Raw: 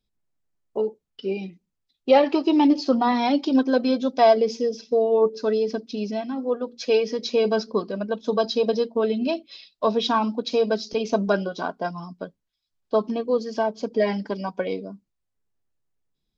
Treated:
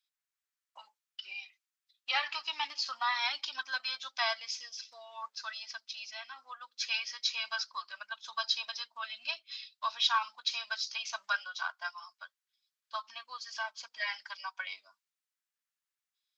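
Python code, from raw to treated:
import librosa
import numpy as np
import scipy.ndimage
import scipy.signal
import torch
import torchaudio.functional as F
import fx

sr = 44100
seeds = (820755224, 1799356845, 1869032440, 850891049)

y = scipy.signal.sosfilt(scipy.signal.cheby2(4, 50, 470.0, 'highpass', fs=sr, output='sos'), x)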